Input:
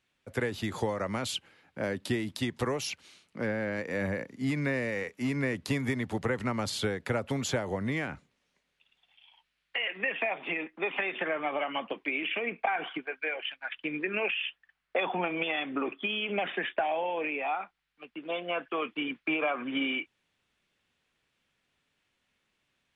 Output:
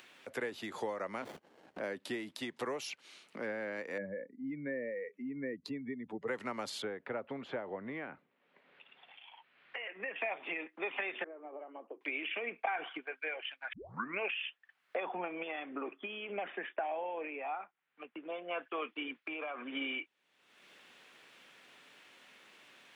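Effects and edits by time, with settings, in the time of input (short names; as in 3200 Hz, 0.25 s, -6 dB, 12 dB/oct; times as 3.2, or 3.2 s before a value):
1.22–1.8 running maximum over 33 samples
3.98–6.28 spectral contrast raised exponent 2
6.82–10.16 air absorption 470 m
11.24–12.01 ladder band-pass 420 Hz, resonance 50%
13.73 tape start 0.47 s
14.96–18.51 air absorption 400 m
19.25–19.67 compressor 2.5:1, threshold -33 dBFS
whole clip: HPF 190 Hz 12 dB/oct; tone controls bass -8 dB, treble -4 dB; upward compressor, threshold -34 dBFS; gain -5.5 dB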